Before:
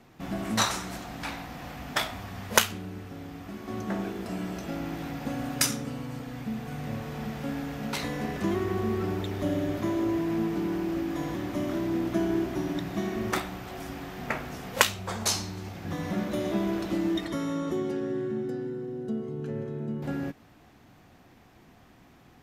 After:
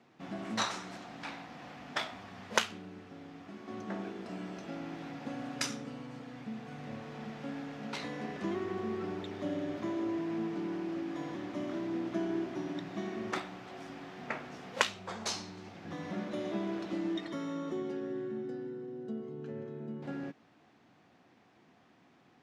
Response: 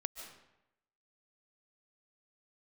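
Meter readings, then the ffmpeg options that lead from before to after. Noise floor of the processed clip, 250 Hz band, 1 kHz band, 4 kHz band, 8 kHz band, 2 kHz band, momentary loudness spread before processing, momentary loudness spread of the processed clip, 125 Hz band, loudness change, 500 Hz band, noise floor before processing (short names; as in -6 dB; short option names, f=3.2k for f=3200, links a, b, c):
-64 dBFS, -7.5 dB, -6.5 dB, -7.5 dB, -12.0 dB, -6.5 dB, 11 LU, 12 LU, -11.5 dB, -7.5 dB, -6.5 dB, -56 dBFS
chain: -af "highpass=170,lowpass=5.6k,volume=-6.5dB"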